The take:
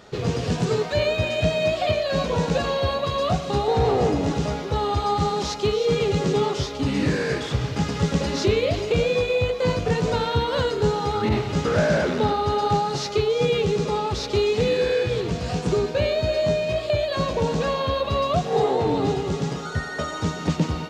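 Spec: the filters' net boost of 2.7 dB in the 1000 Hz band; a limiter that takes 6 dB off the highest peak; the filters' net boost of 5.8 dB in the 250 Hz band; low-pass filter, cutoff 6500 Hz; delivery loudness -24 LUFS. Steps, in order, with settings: LPF 6500 Hz; bell 250 Hz +8 dB; bell 1000 Hz +3 dB; gain -2.5 dB; limiter -14 dBFS

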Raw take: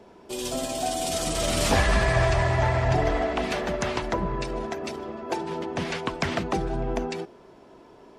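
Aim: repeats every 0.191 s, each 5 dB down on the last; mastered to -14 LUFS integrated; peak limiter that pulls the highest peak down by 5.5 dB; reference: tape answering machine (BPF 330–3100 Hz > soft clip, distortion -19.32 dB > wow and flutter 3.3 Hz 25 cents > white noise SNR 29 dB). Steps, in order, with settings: limiter -15.5 dBFS; BPF 330–3100 Hz; feedback echo 0.191 s, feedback 56%, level -5 dB; soft clip -20 dBFS; wow and flutter 3.3 Hz 25 cents; white noise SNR 29 dB; gain +16 dB

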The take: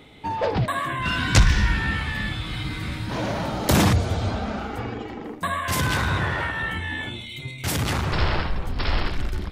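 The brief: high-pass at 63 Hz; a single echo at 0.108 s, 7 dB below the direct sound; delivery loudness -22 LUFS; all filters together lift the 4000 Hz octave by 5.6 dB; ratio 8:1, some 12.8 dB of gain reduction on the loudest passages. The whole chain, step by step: HPF 63 Hz; bell 4000 Hz +7 dB; compressor 8:1, threshold -24 dBFS; echo 0.108 s -7 dB; gain +5.5 dB

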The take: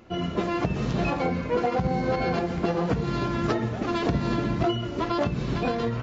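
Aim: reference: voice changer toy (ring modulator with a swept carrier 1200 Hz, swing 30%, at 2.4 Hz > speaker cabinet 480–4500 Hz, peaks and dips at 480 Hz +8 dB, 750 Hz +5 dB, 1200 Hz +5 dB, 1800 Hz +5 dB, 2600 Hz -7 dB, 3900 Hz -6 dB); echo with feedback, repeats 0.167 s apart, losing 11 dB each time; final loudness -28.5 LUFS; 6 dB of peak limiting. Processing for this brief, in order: limiter -18.5 dBFS; feedback echo 0.167 s, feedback 28%, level -11 dB; ring modulator with a swept carrier 1200 Hz, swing 30%, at 2.4 Hz; speaker cabinet 480–4500 Hz, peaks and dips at 480 Hz +8 dB, 750 Hz +5 dB, 1200 Hz +5 dB, 1800 Hz +5 dB, 2600 Hz -7 dB, 3900 Hz -6 dB; gain -2 dB

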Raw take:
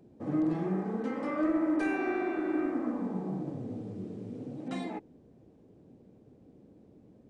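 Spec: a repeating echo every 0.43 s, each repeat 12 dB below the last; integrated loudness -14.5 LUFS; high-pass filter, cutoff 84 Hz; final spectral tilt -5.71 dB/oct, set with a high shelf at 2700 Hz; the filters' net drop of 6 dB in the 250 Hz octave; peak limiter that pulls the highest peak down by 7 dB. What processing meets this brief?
HPF 84 Hz; bell 250 Hz -8.5 dB; high shelf 2700 Hz +3 dB; limiter -29.5 dBFS; feedback echo 0.43 s, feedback 25%, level -12 dB; gain +25 dB

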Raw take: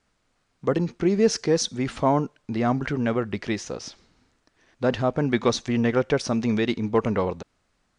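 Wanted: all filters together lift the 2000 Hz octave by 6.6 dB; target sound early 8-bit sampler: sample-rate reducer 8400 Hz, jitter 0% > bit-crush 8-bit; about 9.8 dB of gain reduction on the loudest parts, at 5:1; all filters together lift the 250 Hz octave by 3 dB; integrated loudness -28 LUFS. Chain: bell 250 Hz +3.5 dB; bell 2000 Hz +8 dB; compressor 5:1, threshold -25 dBFS; sample-rate reducer 8400 Hz, jitter 0%; bit-crush 8-bit; gain +1.5 dB

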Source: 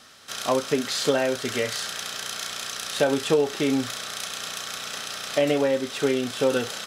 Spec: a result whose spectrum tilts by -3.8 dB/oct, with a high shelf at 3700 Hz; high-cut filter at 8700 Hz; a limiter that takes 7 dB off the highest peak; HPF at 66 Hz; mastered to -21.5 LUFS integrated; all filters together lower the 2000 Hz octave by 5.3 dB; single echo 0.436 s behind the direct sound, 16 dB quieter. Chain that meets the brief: HPF 66 Hz; LPF 8700 Hz; bell 2000 Hz -6 dB; high shelf 3700 Hz -4 dB; limiter -16.5 dBFS; echo 0.436 s -16 dB; gain +7.5 dB

